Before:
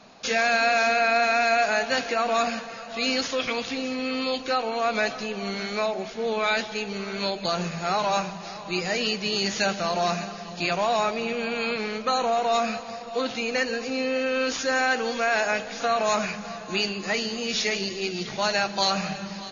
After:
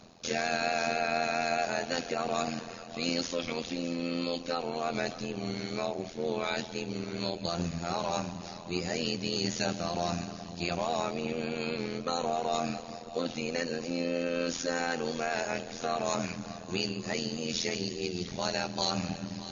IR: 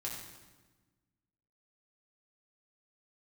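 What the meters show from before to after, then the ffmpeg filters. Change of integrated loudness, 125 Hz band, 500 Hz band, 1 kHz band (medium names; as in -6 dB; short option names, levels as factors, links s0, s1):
-7.5 dB, 0.0 dB, -6.5 dB, -9.0 dB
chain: -af "equalizer=f=1600:w=0.36:g=-10.5,areverse,acompressor=mode=upward:threshold=0.0158:ratio=2.5,areverse,tremolo=f=84:d=0.889,volume=1.41"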